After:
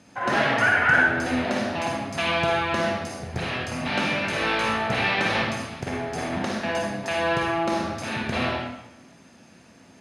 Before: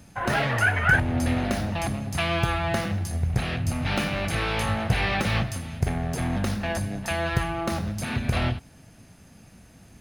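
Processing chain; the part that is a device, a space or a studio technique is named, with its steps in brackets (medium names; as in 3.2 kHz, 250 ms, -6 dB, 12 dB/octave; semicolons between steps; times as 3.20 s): supermarket ceiling speaker (band-pass 200–6700 Hz; reverberation RT60 0.90 s, pre-delay 42 ms, DRR -2 dB)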